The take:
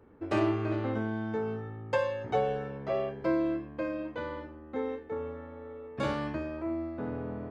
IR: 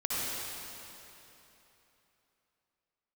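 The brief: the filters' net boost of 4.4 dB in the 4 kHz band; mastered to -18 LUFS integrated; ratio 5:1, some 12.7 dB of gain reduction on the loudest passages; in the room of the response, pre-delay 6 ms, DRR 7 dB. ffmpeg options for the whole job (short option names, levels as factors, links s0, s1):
-filter_complex "[0:a]equalizer=f=4000:t=o:g=6,acompressor=threshold=0.0126:ratio=5,asplit=2[s0][s1];[1:a]atrim=start_sample=2205,adelay=6[s2];[s1][s2]afir=irnorm=-1:irlink=0,volume=0.178[s3];[s0][s3]amix=inputs=2:normalize=0,volume=13.3"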